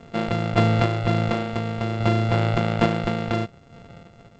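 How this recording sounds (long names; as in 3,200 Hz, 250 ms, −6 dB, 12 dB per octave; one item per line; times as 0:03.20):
a buzz of ramps at a fixed pitch in blocks of 64 samples
sample-and-hold tremolo
G.722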